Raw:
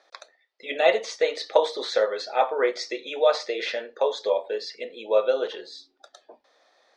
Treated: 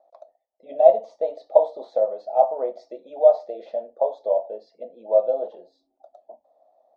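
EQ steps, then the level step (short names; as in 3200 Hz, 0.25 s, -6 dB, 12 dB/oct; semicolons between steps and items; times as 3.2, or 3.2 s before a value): dynamic EQ 4000 Hz, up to +4 dB, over -42 dBFS, Q 1.5; EQ curve 220 Hz 0 dB, 430 Hz -9 dB, 660 Hz +11 dB, 1600 Hz -30 dB, 2900 Hz -28 dB; -1.0 dB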